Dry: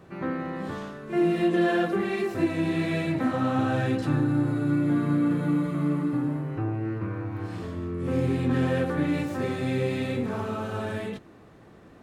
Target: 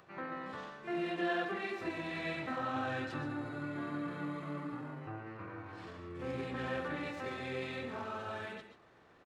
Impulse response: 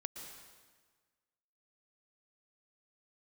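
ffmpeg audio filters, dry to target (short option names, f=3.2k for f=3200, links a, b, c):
-filter_complex "[0:a]acrossover=split=570 6500:gain=0.251 1 0.2[a][b][c];[a][b][c]amix=inputs=3:normalize=0,acompressor=mode=upward:threshold=-54dB:ratio=2.5,atempo=1.3[d];[1:a]atrim=start_sample=2205,atrim=end_sample=6615[e];[d][e]afir=irnorm=-1:irlink=0,volume=-2dB"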